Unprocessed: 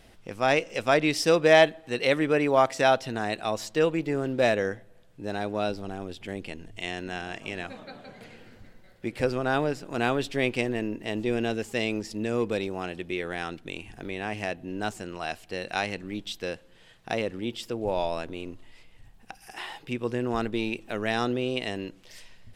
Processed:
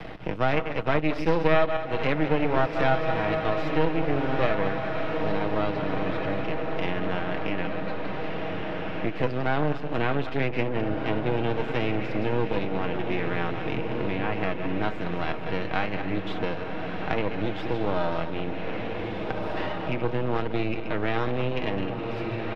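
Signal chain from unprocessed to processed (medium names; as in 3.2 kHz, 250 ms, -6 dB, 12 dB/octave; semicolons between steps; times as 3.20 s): backward echo that repeats 104 ms, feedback 45%, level -8.5 dB; high-pass 57 Hz 6 dB/octave; comb 6.4 ms, depth 49%; half-wave rectifier; distance through air 350 m; echo that smears into a reverb 1679 ms, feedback 42%, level -9 dB; three bands compressed up and down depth 70%; trim +3.5 dB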